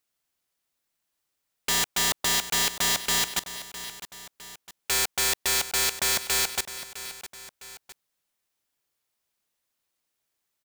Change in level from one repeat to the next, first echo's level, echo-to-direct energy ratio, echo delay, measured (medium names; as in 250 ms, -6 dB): -6.0 dB, -13.5 dB, -12.5 dB, 658 ms